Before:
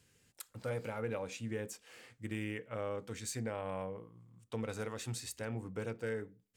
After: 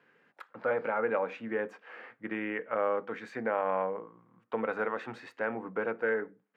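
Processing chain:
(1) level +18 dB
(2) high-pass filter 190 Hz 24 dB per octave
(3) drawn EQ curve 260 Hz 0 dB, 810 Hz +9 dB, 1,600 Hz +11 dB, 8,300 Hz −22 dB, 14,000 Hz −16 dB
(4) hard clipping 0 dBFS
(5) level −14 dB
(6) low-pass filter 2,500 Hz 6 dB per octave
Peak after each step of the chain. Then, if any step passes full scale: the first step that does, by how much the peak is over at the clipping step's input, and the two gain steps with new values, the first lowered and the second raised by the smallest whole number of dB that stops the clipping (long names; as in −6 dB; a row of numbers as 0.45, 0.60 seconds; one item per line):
−8.0, −9.0, −2.5, −2.5, −16.5, −17.0 dBFS
no step passes full scale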